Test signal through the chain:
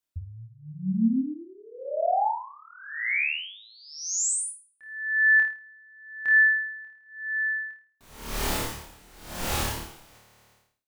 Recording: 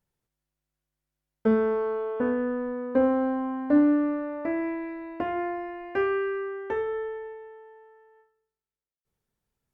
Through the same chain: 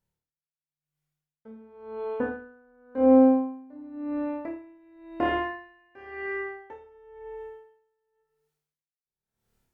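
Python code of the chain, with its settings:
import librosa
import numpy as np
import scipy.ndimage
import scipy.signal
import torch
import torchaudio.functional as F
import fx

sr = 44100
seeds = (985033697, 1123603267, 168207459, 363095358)

p1 = fx.dynamic_eq(x, sr, hz=870.0, q=7.5, threshold_db=-53.0, ratio=4.0, max_db=7)
p2 = fx.rider(p1, sr, range_db=5, speed_s=0.5)
p3 = p2 + fx.room_flutter(p2, sr, wall_m=4.6, rt60_s=0.69, dry=0)
y = p3 * 10.0 ** (-27 * (0.5 - 0.5 * np.cos(2.0 * np.pi * 0.94 * np.arange(len(p3)) / sr)) / 20.0)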